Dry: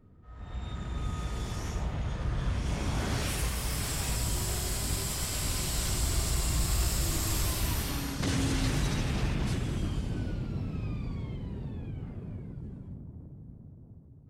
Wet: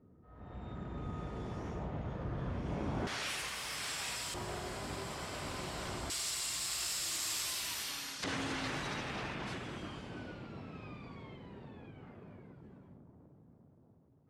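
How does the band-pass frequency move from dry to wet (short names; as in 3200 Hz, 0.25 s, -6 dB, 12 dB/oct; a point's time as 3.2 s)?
band-pass, Q 0.55
410 Hz
from 3.07 s 2400 Hz
from 4.34 s 750 Hz
from 6.1 s 4200 Hz
from 8.24 s 1300 Hz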